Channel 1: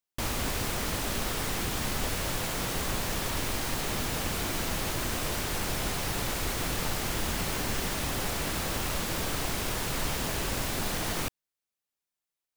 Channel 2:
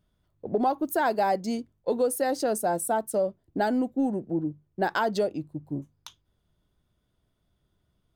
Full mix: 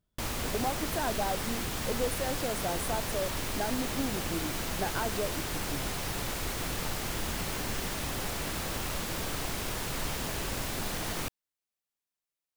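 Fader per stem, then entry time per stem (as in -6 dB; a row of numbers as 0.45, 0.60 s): -3.0, -8.5 dB; 0.00, 0.00 s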